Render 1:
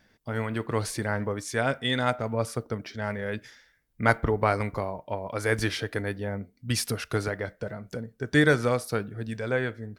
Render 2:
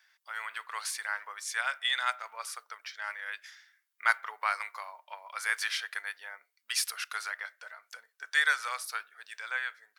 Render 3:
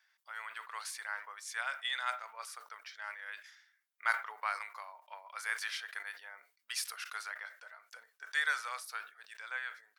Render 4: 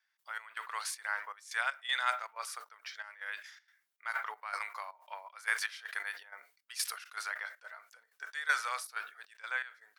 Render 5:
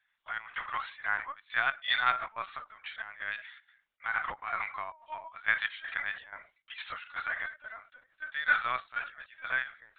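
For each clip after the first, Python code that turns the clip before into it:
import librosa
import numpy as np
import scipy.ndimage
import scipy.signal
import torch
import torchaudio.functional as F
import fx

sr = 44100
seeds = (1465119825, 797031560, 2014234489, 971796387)

y1 = scipy.signal.sosfilt(scipy.signal.butter(4, 1100.0, 'highpass', fs=sr, output='sos'), x)
y2 = fx.peak_eq(y1, sr, hz=840.0, db=2.5, octaves=2.0)
y2 = fx.sustainer(y2, sr, db_per_s=150.0)
y2 = y2 * librosa.db_to_amplitude(-7.5)
y3 = fx.step_gate(y2, sr, bpm=159, pattern='..xx..xxxx.xxx', floor_db=-12.0, edge_ms=4.5)
y3 = y3 * librosa.db_to_amplitude(4.5)
y4 = fx.lpc_vocoder(y3, sr, seeds[0], excitation='pitch_kept', order=16)
y4 = y4 * librosa.db_to_amplitude(4.5)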